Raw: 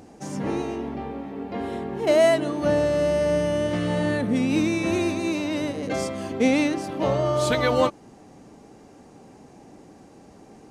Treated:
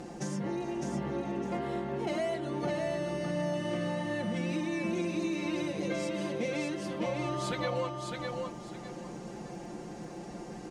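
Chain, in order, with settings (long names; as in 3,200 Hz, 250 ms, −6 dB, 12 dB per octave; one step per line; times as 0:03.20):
low-pass filter 9,700 Hz 12 dB per octave
comb filter 5.7 ms, depth 92%
downward compressor 6 to 1, threshold −35 dBFS, peak gain reduction 21 dB
surface crackle 23 per second −56 dBFS
on a send: repeating echo 607 ms, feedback 27%, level −4 dB
on the sum: level +2 dB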